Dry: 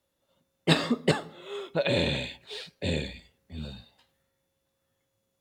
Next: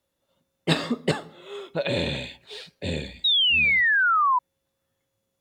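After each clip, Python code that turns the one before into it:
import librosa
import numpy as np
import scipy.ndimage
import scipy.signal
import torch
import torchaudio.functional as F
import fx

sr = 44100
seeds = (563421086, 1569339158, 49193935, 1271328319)

y = fx.spec_paint(x, sr, seeds[0], shape='fall', start_s=3.24, length_s=1.15, low_hz=970.0, high_hz=3900.0, level_db=-20.0)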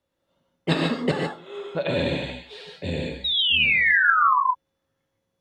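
y = fx.lowpass(x, sr, hz=3000.0, slope=6)
y = fx.rev_gated(y, sr, seeds[1], gate_ms=170, shape='rising', drr_db=0.5)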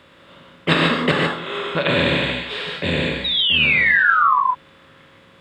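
y = fx.bin_compress(x, sr, power=0.6)
y = y * 10.0 ** (1.5 / 20.0)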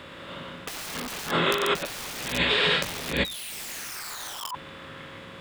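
y = (np.mod(10.0 ** (15.5 / 20.0) * x + 1.0, 2.0) - 1.0) / 10.0 ** (15.5 / 20.0)
y = fx.over_compress(y, sr, threshold_db=-28.0, ratio=-0.5)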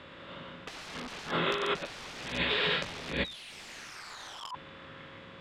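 y = scipy.signal.sosfilt(scipy.signal.butter(2, 5000.0, 'lowpass', fs=sr, output='sos'), x)
y = y * 10.0 ** (-6.0 / 20.0)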